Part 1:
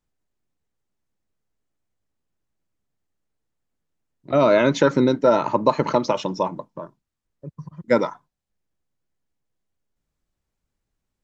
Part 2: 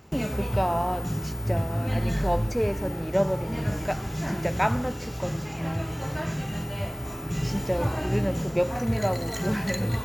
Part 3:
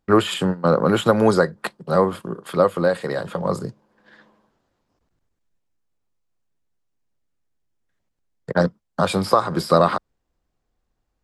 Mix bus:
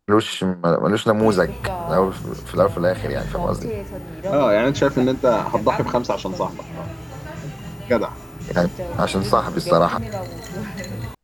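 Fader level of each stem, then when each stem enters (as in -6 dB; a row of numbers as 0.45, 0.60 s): -0.5, -3.0, -0.5 dB; 0.00, 1.10, 0.00 s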